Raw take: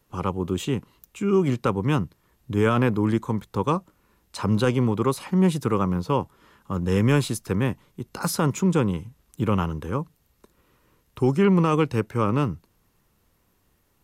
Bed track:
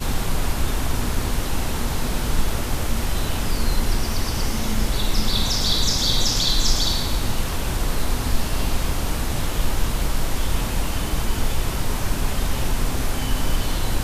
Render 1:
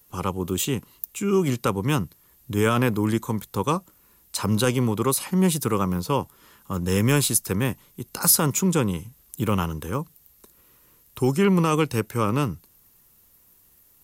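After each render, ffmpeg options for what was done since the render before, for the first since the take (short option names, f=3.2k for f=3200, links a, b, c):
-af "aemphasis=mode=production:type=75fm"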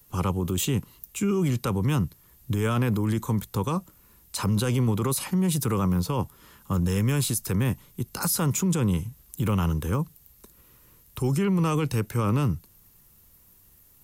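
-filter_complex "[0:a]acrossover=split=180|1400[a][b][c];[a]acontrast=81[d];[d][b][c]amix=inputs=3:normalize=0,alimiter=limit=-17dB:level=0:latency=1:release=22"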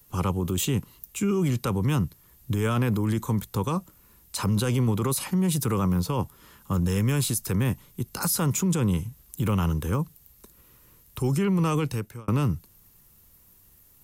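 -filter_complex "[0:a]asplit=2[a][b];[a]atrim=end=12.28,asetpts=PTS-STARTPTS,afade=t=out:st=11.8:d=0.48[c];[b]atrim=start=12.28,asetpts=PTS-STARTPTS,afade=t=in:d=0.004:c=hsin[d];[c][d]concat=n=2:v=0:a=1"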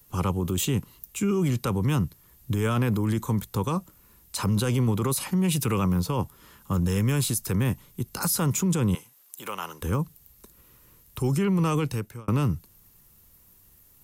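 -filter_complex "[0:a]asettb=1/sr,asplit=3[a][b][c];[a]atrim=end=5.444[d];[b]atrim=start=5.44:end=5.84,asetpts=PTS-STARTPTS,afade=t=in:d=0.004:c=qsin,afade=t=out:st=0.396:d=0.004:c=qsin,equalizer=f=2.6k:w=2.7:g=9.5[e];[c]atrim=start=5.836[f];[d][e]acrossfade=d=0.004:c1=hsin:c2=qsin[g];[g][f]acrossfade=d=0.004:c1=qsin:c2=hsin,asettb=1/sr,asplit=3[h][i][j];[h]atrim=end=8.954[k];[i]atrim=start=8.95:end=9.82,asetpts=PTS-STARTPTS,afade=t=in:d=0.004:c=qsin,afade=t=out:st=0.866:d=0.004:c=qsin,highpass=640[l];[j]atrim=start=9.816[m];[k][l]acrossfade=d=0.004:c1=hsin:c2=qsin[n];[n][m]acrossfade=d=0.004:c1=qsin:c2=hsin"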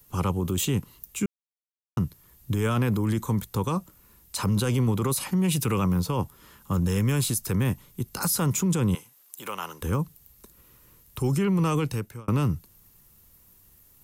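-filter_complex "[0:a]asplit=3[a][b][c];[a]atrim=end=1.26,asetpts=PTS-STARTPTS,afade=t=out:st=1.256:d=0.004:c=hsin[d];[b]atrim=start=1.26:end=1.97,asetpts=PTS-STARTPTS,volume=0[e];[c]atrim=start=1.97,asetpts=PTS-STARTPTS,afade=t=in:d=0.004:c=hsin[f];[d][e][f]concat=n=3:v=0:a=1"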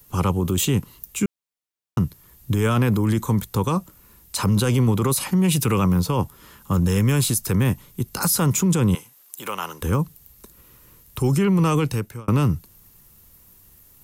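-af "volume=5dB"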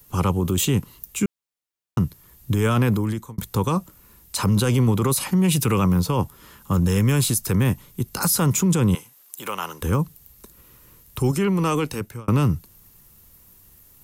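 -filter_complex "[0:a]asettb=1/sr,asplit=3[a][b][c];[a]atrim=end=11.314[d];[b]atrim=start=11.31:end=12.01,asetpts=PTS-STARTPTS,afade=t=in:d=0.004:c=qsin,afade=t=out:st=0.696:d=0.004:c=qsin,equalizer=f=120:w=2.3:g=-14[e];[c]atrim=start=12.006[f];[d][e]acrossfade=d=0.004:c1=hsin:c2=qsin[g];[g][f]acrossfade=d=0.004:c1=qsin:c2=hsin,asplit=2[h][i];[h]atrim=end=3.38,asetpts=PTS-STARTPTS,afade=t=out:st=2.9:d=0.48[j];[i]atrim=start=3.38,asetpts=PTS-STARTPTS,afade=t=in:d=0.004:c=hsin[k];[j][k]concat=n=2:v=0:a=1"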